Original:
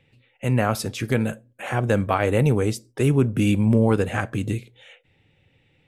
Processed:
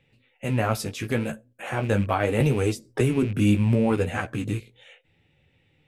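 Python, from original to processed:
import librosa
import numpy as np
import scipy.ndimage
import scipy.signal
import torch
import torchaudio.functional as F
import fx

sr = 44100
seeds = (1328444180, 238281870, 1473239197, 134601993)

y = fx.rattle_buzz(x, sr, strikes_db=-26.0, level_db=-28.0)
y = fx.chorus_voices(y, sr, voices=2, hz=0.74, base_ms=16, depth_ms=4.2, mix_pct=35)
y = fx.band_squash(y, sr, depth_pct=100, at=(2.4, 3.23))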